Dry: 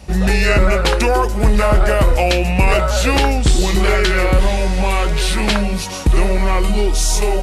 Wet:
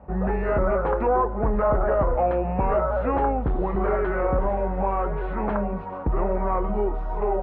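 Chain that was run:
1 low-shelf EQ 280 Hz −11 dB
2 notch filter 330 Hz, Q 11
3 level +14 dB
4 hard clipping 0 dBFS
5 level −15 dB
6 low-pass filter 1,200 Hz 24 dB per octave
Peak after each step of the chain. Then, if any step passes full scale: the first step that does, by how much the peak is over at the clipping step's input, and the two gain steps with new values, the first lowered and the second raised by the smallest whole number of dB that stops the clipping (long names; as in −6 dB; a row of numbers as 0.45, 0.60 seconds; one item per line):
−4.5, −4.5, +9.5, 0.0, −15.0, −13.0 dBFS
step 3, 9.5 dB
step 3 +4 dB, step 5 −5 dB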